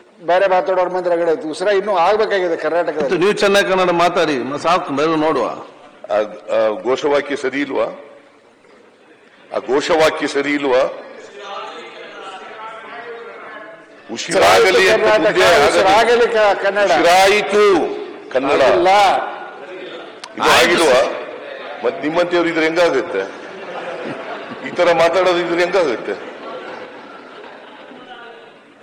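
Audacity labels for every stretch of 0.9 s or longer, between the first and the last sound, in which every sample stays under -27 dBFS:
8.000000	9.520000	silence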